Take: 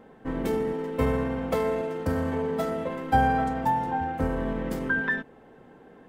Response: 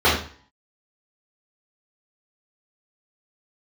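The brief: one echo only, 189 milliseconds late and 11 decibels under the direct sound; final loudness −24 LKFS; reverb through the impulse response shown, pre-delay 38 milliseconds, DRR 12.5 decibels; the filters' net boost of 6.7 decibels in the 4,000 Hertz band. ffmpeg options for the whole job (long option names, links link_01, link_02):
-filter_complex "[0:a]equalizer=frequency=4000:width_type=o:gain=9,aecho=1:1:189:0.282,asplit=2[link_01][link_02];[1:a]atrim=start_sample=2205,adelay=38[link_03];[link_02][link_03]afir=irnorm=-1:irlink=0,volume=-35dB[link_04];[link_01][link_04]amix=inputs=2:normalize=0,volume=2.5dB"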